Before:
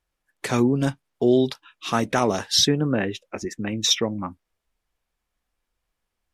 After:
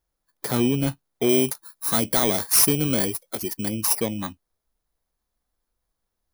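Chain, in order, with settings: FFT order left unsorted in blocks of 16 samples; 1.29–3.69 high shelf 3800 Hz +7.5 dB; soft clip -11.5 dBFS, distortion -12 dB

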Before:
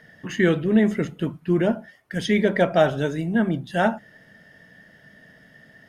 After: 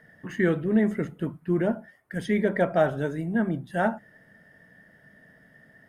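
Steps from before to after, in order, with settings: band shelf 4100 Hz -8.5 dB; gain -4 dB

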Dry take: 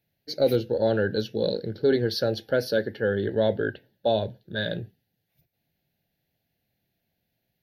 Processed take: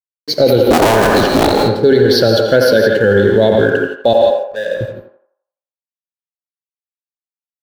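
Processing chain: 0.66–1.53 cycle switcher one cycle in 2, inverted; 4.13–4.81 vowel filter e; crossover distortion -51 dBFS; narrowing echo 85 ms, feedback 45%, band-pass 930 Hz, level -4 dB; non-linear reverb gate 0.19 s rising, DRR 6 dB; maximiser +18 dB; gain -1 dB

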